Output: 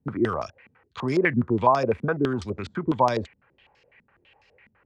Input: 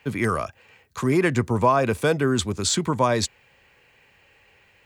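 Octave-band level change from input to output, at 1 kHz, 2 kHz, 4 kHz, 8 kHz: 0.0 dB, −2.5 dB, −12.5 dB, below −20 dB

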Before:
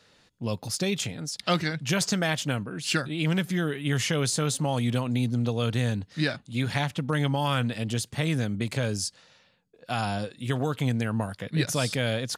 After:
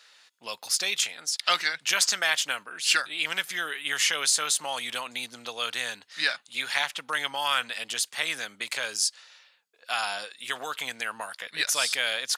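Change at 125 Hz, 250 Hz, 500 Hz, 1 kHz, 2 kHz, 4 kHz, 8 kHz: −31.5, −21.5, −8.5, +1.0, +5.0, +6.0, +6.0 decibels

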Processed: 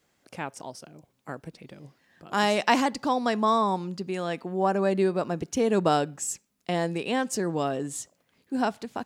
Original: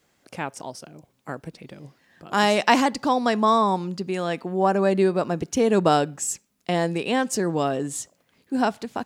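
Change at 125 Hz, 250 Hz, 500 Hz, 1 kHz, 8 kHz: −4.0, −4.0, −4.0, −4.0, −4.0 decibels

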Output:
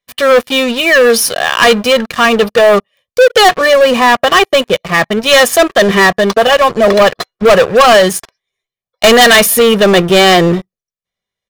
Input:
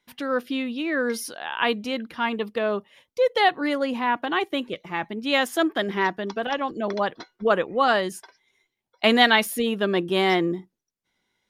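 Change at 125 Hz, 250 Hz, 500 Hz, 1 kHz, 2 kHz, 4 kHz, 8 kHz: +17.0, +11.5, +17.0, +14.0, +15.0, +16.0, +23.0 decibels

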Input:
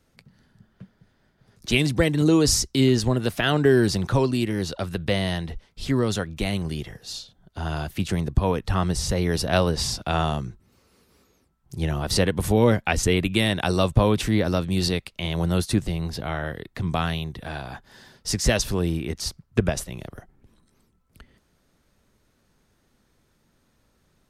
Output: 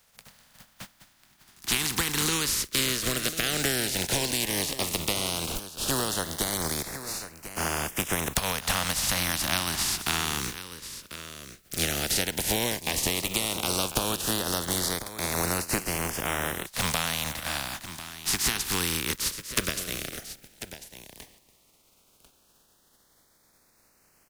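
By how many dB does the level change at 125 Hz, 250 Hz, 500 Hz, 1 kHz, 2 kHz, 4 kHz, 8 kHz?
−12.0, −11.0, −10.0, −3.0, −0.5, +1.5, +4.5 decibels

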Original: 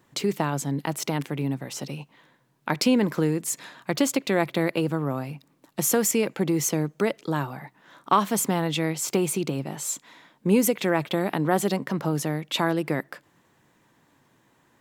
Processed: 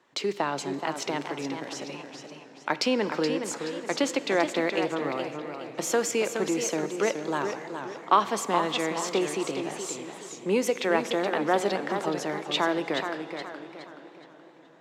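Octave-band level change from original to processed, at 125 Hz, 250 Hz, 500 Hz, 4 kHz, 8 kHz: −13.0, −5.0, 0.0, +0.5, −5.5 decibels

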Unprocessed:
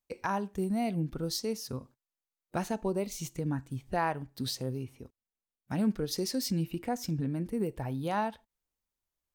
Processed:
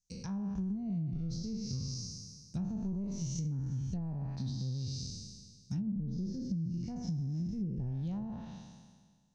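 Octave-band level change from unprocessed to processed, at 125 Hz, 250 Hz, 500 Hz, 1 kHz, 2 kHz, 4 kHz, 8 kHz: +1.5 dB, −2.5 dB, −17.5 dB, −21.0 dB, below −20 dB, −7.5 dB, −5.0 dB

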